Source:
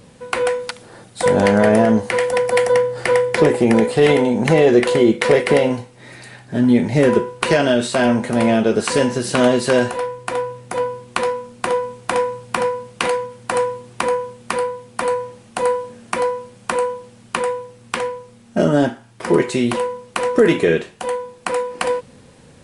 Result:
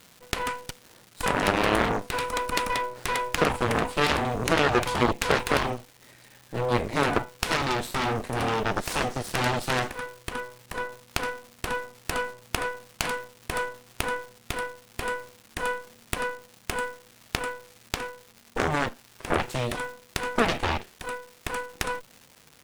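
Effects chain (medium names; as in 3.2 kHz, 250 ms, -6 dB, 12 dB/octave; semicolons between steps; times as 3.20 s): Chebyshev shaper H 3 -8 dB, 8 -19 dB, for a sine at -1.5 dBFS; crackle 510 per s -36 dBFS; trim -3 dB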